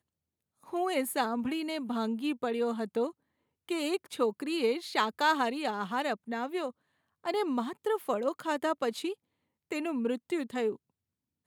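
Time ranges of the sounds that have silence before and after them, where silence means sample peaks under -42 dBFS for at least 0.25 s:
0.69–3.11
3.69–6.7
7.25–9.14
9.71–10.76

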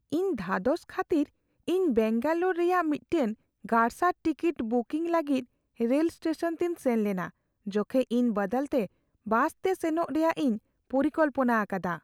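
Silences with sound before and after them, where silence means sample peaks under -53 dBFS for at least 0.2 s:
1.29–1.68
3.35–3.64
5.45–5.77
7.3–7.66
8.87–9.26
10.58–10.9

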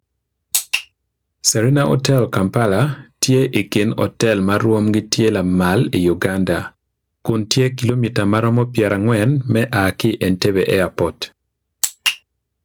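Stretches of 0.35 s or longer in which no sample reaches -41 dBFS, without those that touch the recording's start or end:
0.85–1.44
6.7–7.25
11.29–11.83

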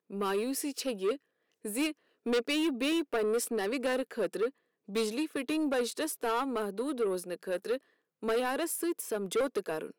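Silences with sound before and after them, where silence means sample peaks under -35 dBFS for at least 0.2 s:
1.15–1.65
1.91–2.26
4.49–4.94
7.77–8.23

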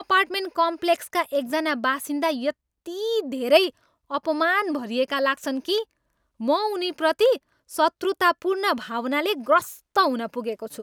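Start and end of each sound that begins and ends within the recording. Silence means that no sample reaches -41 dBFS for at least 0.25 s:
2.86–3.7
4.1–5.84
6.4–7.37

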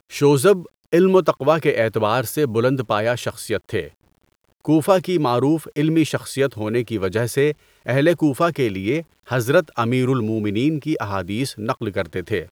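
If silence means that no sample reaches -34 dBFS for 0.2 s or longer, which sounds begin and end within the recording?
0.93–3.88
4.65–7.53
7.86–9.02

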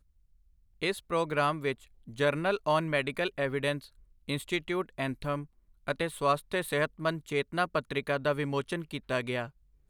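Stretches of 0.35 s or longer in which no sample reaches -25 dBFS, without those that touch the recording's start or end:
1.72–2.2
3.73–4.29
5.35–5.88

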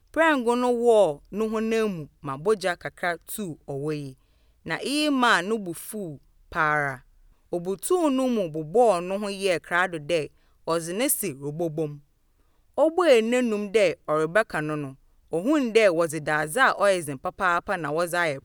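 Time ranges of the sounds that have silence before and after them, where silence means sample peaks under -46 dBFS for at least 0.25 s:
4.66–6.18
6.52–7.01
7.52–10.28
10.67–11.99
12.77–14.95

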